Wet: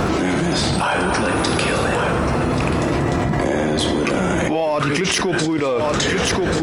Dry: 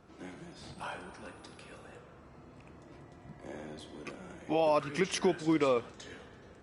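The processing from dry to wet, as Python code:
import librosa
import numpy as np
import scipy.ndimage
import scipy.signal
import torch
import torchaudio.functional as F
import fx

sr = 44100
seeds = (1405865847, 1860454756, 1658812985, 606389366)

p1 = np.clip(x, -10.0 ** (-30.5 / 20.0), 10.0 ** (-30.5 / 20.0))
p2 = x + F.gain(torch.from_numpy(p1), -6.5).numpy()
p3 = p2 + 10.0 ** (-15.5 / 20.0) * np.pad(p2, (int(1133 * sr / 1000.0), 0))[:len(p2)]
p4 = fx.env_flatten(p3, sr, amount_pct=100)
y = F.gain(torch.from_numpy(p4), 3.5).numpy()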